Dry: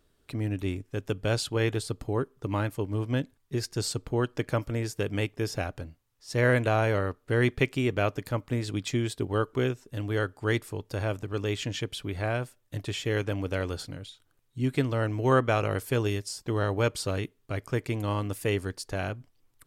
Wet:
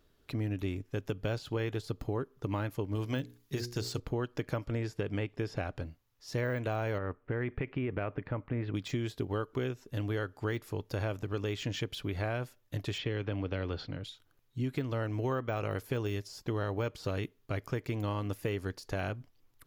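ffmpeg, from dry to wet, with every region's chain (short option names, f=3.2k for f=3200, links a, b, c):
-filter_complex "[0:a]asettb=1/sr,asplit=3[a][b][c];[a]atrim=end=2.954[d];[b]atrim=start=2.95:end=4,asetpts=PTS-STARTPTS,afade=t=in:d=0.004:c=qsin,afade=t=out:st=1.046:d=0.004:c=qsin,highshelf=f=2.6k:g=10.5,bandreject=f=60:t=h:w=6,bandreject=f=120:t=h:w=6,bandreject=f=180:t=h:w=6,bandreject=f=240:t=h:w=6,bandreject=f=300:t=h:w=6,bandreject=f=360:t=h:w=6,bandreject=f=420:t=h:w=6,bandreject=f=480:t=h:w=6[e];[c]atrim=start=3.996[f];[d][e]acrossfade=d=0.004:c1=hsin:c2=qsin[g];[g][f]acrossfade=d=0.004:c1=qsin:c2=hsin,asettb=1/sr,asplit=3[h][i][j];[h]atrim=end=4.614[k];[i]atrim=start=4.61:end=5.85,asetpts=PTS-STARTPTS,afade=t=in:d=0.004:c=qsin,afade=t=out:st=1.236:d=0.004:c=qsin,lowpass=8.7k,acrossover=split=2700[l][m];[m]acompressor=threshold=-44dB:ratio=4:attack=1:release=60[n];[l][n]amix=inputs=2:normalize=0,equalizer=f=6.2k:w=6.2:g=-5.5[o];[j]atrim=start=5.846[p];[k][o]acrossfade=d=0.004:c1=hsin:c2=qsin[q];[q][p]acrossfade=d=0.004:c1=qsin:c2=hsin,asettb=1/sr,asplit=3[r][s][t];[r]atrim=end=6.984[u];[s]atrim=start=6.98:end=8.75,asetpts=PTS-STARTPTS,afade=t=in:d=0.004:c=qsin,afade=t=out:st=1.766:d=0.004:c=qsin,lowpass=f=2.4k:w=0.5412,lowpass=f=2.4k:w=1.3066,acompressor=threshold=-26dB:ratio=6:attack=3.2:release=140:knee=1:detection=peak[v];[t]atrim=start=8.746[w];[u][v]acrossfade=d=0.004:c1=hsin:c2=qsin[x];[x][w]acrossfade=d=0.004:c1=qsin:c2=hsin,asettb=1/sr,asplit=3[y][z][aa];[y]atrim=end=12.984[ab];[z]atrim=start=12.98:end=14.04,asetpts=PTS-STARTPTS,afade=t=in:d=0.004:c=qsin,afade=t=out:st=1.056:d=0.004:c=qsin,lowpass=f=4.2k:w=0.5412,lowpass=f=4.2k:w=1.3066,acrossover=split=390|3000[ac][ad][ae];[ad]acompressor=threshold=-32dB:ratio=6:attack=3.2:release=140:knee=2.83:detection=peak[af];[ac][af][ae]amix=inputs=3:normalize=0[ag];[aa]atrim=start=14.036[ah];[ab][ag]acrossfade=d=0.004:c1=hsin:c2=qsin[ai];[ai][ah]acrossfade=d=0.004:c1=qsin:c2=hsin,deesser=0.95,equalizer=f=8.6k:t=o:w=0.24:g=-13.5,acompressor=threshold=-30dB:ratio=6"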